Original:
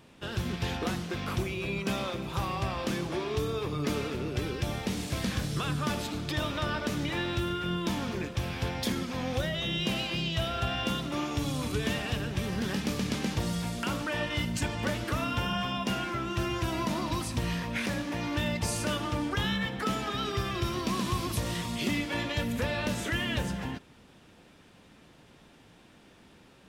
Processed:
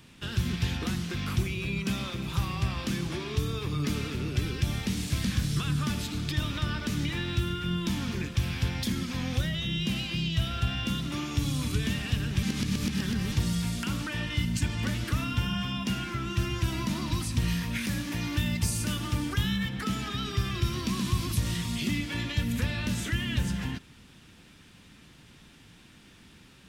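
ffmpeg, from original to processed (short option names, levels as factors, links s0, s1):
-filter_complex "[0:a]asettb=1/sr,asplit=3[s0][s1][s2];[s0]atrim=end=17.484[s3];[s1]atrim=start=17.48:end=19.69,asetpts=PTS-STARTPTS,afade=t=in:d=0.004:c=qsin,afade=t=out:st=2.206:d=0.004:c=qsin,highshelf=f=9500:g=10[s4];[s2]atrim=start=19.686[s5];[s3][s4]acrossfade=d=0.004:c1=hsin:c2=qsin[s6];[s6][s5]acrossfade=d=0.004:c1=qsin:c2=hsin,asplit=3[s7][s8][s9];[s7]atrim=end=12.432[s10];[s8]atrim=start=12.428:end=13.322,asetpts=PTS-STARTPTS,areverse[s11];[s9]atrim=start=13.318[s12];[s10][s11]acrossfade=d=0.004:c1=hsin:c2=hsin[s13];[s13][s12]acrossfade=d=0.004:c1=hsin:c2=hsin,equalizer=f=600:t=o:w=1.9:g=-12.5,acrossover=split=310[s14][s15];[s15]acompressor=threshold=0.00708:ratio=2[s16];[s14][s16]amix=inputs=2:normalize=0,volume=2"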